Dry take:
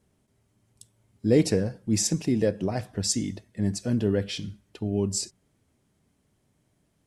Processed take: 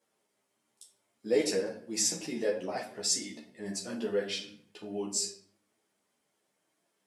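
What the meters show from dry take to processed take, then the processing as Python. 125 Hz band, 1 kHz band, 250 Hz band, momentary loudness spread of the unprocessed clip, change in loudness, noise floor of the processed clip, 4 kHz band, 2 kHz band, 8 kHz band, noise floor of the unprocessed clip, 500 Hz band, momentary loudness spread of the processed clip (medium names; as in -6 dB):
-21.5 dB, -2.0 dB, -12.0 dB, 12 LU, -5.5 dB, -79 dBFS, -1.0 dB, -1.0 dB, -1.5 dB, -71 dBFS, -4.0 dB, 14 LU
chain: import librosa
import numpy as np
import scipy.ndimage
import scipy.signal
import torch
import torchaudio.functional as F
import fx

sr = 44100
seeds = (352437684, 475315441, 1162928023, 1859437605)

y = scipy.signal.sosfilt(scipy.signal.butter(2, 480.0, 'highpass', fs=sr, output='sos'), x)
y = fx.room_shoebox(y, sr, seeds[0], volume_m3=75.0, walls='mixed', distance_m=0.56)
y = fx.ensemble(y, sr)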